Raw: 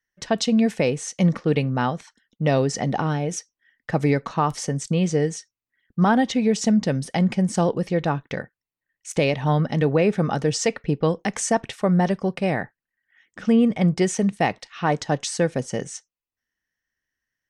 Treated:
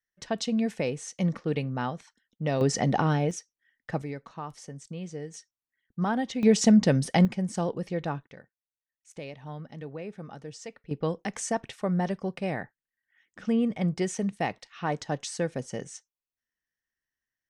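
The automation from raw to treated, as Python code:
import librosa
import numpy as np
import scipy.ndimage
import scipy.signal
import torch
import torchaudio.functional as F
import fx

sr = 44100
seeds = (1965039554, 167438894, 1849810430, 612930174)

y = fx.gain(x, sr, db=fx.steps((0.0, -8.0), (2.61, -1.0), (3.31, -8.0), (4.02, -16.5), (5.34, -9.5), (6.43, 0.5), (7.25, -8.5), (8.27, -19.5), (10.91, -8.0)))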